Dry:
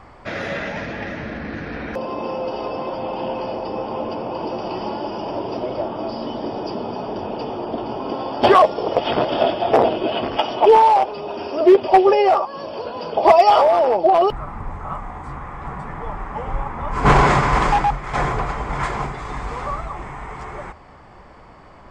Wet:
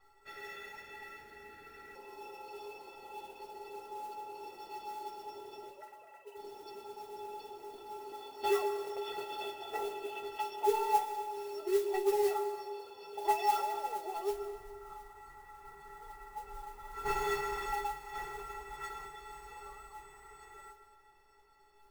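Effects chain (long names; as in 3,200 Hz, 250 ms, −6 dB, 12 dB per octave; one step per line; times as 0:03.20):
0:05.71–0:06.37: three sine waves on the formant tracks
tilt shelving filter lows −3.5 dB, about 1,200 Hz
stiff-string resonator 400 Hz, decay 0.29 s, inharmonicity 0.03
noise that follows the level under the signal 18 dB
dense smooth reverb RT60 1.8 s, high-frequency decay 0.7×, pre-delay 110 ms, DRR 9 dB
level −4 dB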